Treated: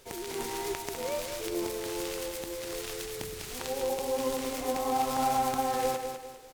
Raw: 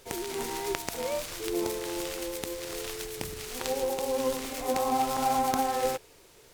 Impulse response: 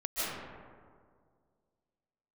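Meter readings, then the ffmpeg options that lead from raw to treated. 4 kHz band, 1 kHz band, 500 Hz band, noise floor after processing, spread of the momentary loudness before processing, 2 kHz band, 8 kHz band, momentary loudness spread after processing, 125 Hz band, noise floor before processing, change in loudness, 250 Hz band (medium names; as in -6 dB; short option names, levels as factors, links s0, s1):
-1.5 dB, -1.0 dB, -1.0 dB, -45 dBFS, 9 LU, -1.5 dB, -1.5 dB, 9 LU, -0.5 dB, -56 dBFS, -1.5 dB, -1.5 dB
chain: -filter_complex "[0:a]asplit=2[s0][s1];[s1]alimiter=limit=0.15:level=0:latency=1:release=206,volume=1.19[s2];[s0][s2]amix=inputs=2:normalize=0,aeval=exprs='0.398*(abs(mod(val(0)/0.398+3,4)-2)-1)':c=same,aecho=1:1:200|400|600|800:0.447|0.17|0.0645|0.0245,volume=0.376"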